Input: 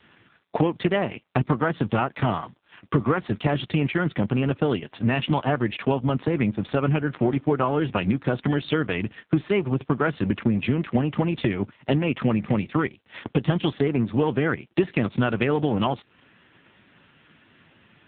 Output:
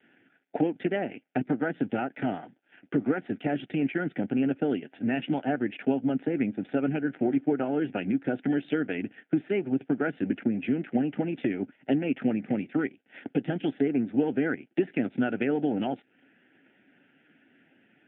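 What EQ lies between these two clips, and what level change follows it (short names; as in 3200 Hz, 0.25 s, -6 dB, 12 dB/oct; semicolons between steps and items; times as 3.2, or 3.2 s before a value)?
air absorption 390 m; speaker cabinet 250–3500 Hz, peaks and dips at 270 Hz +8 dB, 760 Hz +7 dB, 1500 Hz +7 dB; fixed phaser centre 2600 Hz, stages 4; -2.5 dB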